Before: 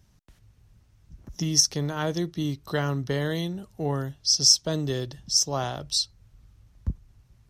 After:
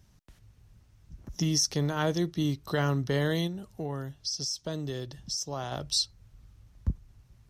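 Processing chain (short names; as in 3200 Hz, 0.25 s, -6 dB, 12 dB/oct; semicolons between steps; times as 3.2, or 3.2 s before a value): limiter -16.5 dBFS, peak gain reduction 11 dB; 3.47–5.72 compressor 2:1, threshold -36 dBFS, peak gain reduction 8 dB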